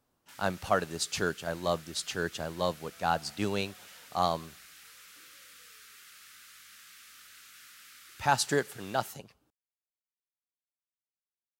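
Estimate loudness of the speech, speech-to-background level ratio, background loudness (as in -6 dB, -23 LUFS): -32.0 LUFS, 19.0 dB, -51.0 LUFS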